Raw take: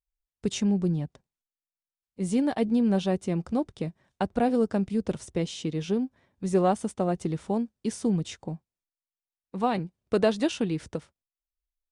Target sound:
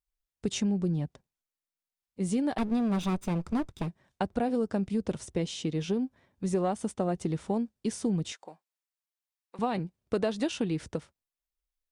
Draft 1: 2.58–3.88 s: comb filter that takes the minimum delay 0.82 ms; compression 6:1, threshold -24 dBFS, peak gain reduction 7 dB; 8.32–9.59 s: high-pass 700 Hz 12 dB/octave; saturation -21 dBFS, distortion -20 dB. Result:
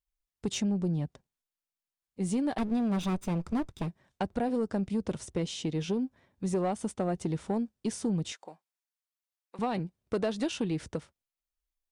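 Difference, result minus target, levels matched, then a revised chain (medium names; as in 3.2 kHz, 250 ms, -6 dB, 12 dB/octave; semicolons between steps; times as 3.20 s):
saturation: distortion +14 dB
2.58–3.88 s: comb filter that takes the minimum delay 0.82 ms; compression 6:1, threshold -24 dBFS, peak gain reduction 7 dB; 8.32–9.59 s: high-pass 700 Hz 12 dB/octave; saturation -12.5 dBFS, distortion -34 dB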